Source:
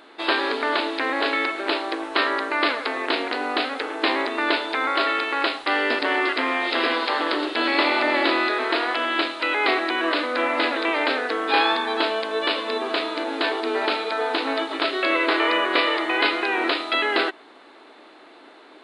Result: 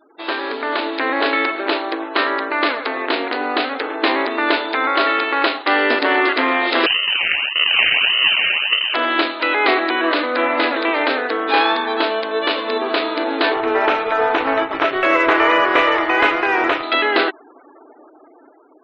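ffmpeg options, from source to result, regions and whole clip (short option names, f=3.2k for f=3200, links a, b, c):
-filter_complex "[0:a]asettb=1/sr,asplit=3[a][b][c];[a]atrim=end=6.864[d];[b]atrim=start=6.86:end=8.94,asetpts=PTS-STARTPTS,afade=t=in:d=0.004:c=qsin,afade=t=out:st=2.076:d=0.004:c=qsin,acrusher=samples=40:mix=1:aa=0.000001:lfo=1:lforange=40:lforate=1.7,highshelf=f=2.4k:g=-5,lowpass=f=2.6k:t=q:w=0.5098,lowpass=f=2.6k:t=q:w=0.6013,lowpass=f=2.6k:t=q:w=0.9,lowpass=f=2.6k:t=q:w=2.563,afreqshift=-3100[e];[c]atrim=start=8.936[f];[d][e]acrossfade=d=0.004:c1=hsin:c2=qsin[g];[g][f]acrossfade=d=0.004:c1=qsin:c2=hsin,asettb=1/sr,asplit=3[h][i][j];[h]atrim=end=13.544[k];[i]atrim=start=13.54:end=16.83,asetpts=PTS-STARTPTS,afade=t=in:d=0.004:c=qsin,afade=t=out:st=3.286:d=0.004:c=qsin,lowpass=f=3.1k:w=0.5412,lowpass=f=3.1k:w=1.3066,asplit=2[l][m];[m]highpass=f=720:p=1,volume=10dB,asoftclip=type=tanh:threshold=-5dB[n];[l][n]amix=inputs=2:normalize=0,lowpass=f=1.8k:p=1,volume=-6dB,aeval=exprs='sgn(val(0))*max(abs(val(0))-0.0168,0)':c=same[o];[j]atrim=start=16.826[p];[k][o]acrossfade=d=0.004:c1=hsin:c2=qsin[q];[q][p]acrossfade=d=0.004:c1=qsin:c2=hsin,afftfilt=real='re*gte(hypot(re,im),0.01)':imag='im*gte(hypot(re,im),0.01)':win_size=1024:overlap=0.75,highshelf=f=4.1k:g=-6.5,dynaudnorm=f=350:g=5:m=11.5dB,volume=-1dB"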